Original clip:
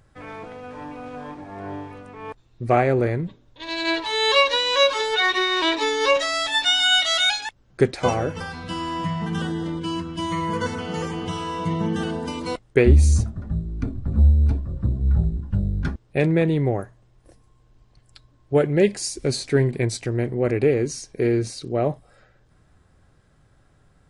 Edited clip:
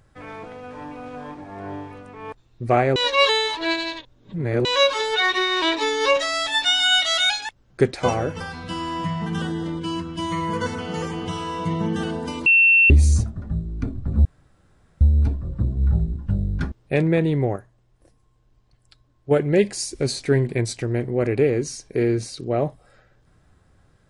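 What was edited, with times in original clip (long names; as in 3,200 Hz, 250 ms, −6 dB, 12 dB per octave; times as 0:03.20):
0:02.96–0:04.65: reverse
0:12.46–0:12.90: beep over 2,700 Hz −11 dBFS
0:14.25: splice in room tone 0.76 s
0:16.80–0:18.55: clip gain −5 dB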